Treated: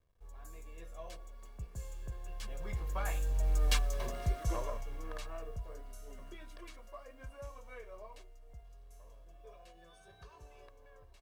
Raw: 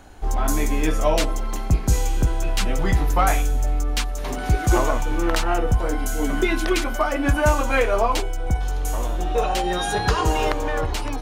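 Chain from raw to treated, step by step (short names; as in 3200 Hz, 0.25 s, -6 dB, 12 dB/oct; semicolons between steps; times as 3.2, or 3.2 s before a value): level-crossing sampler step -40 dBFS; Doppler pass-by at 3.75, 23 m/s, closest 5.3 m; comb 1.8 ms, depth 60%; gain -8.5 dB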